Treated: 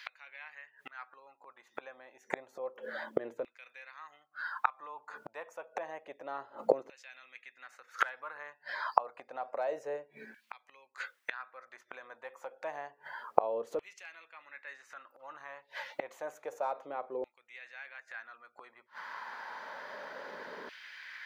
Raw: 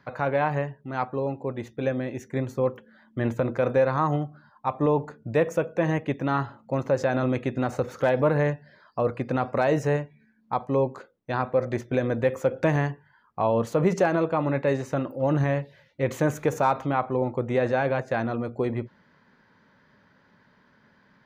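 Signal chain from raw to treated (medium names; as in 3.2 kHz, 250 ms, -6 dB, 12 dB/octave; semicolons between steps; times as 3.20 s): inverted gate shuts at -28 dBFS, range -32 dB; LFO high-pass saw down 0.29 Hz 410–2700 Hz; trim +15 dB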